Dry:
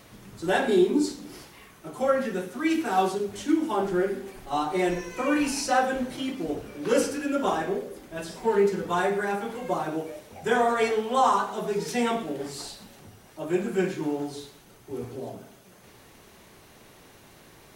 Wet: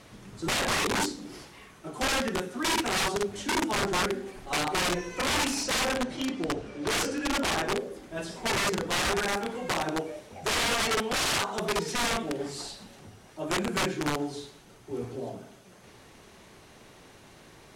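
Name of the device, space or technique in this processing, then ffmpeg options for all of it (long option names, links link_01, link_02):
overflowing digital effects unit: -filter_complex "[0:a]asettb=1/sr,asplit=3[link_01][link_02][link_03];[link_01]atrim=end=5.634[link_04];[link_02]atrim=start=5.63:end=7.65,asetpts=PTS-STARTPTS,afade=type=in:duration=0.004:curve=qsin,afade=type=out:start_time=2.016:duration=0.004:curve=qsin,lowpass=7600[link_05];[link_03]atrim=start=7.646[link_06];[link_04][link_05]acrossfade=duration=0.004:curve1=hsin:curve2=qsin[link_07];[link_07][link_06]acrossfade=duration=0.004:curve1=qsin:curve2=hsin,aeval=exprs='(mod(11.9*val(0)+1,2)-1)/11.9':channel_layout=same,lowpass=9500"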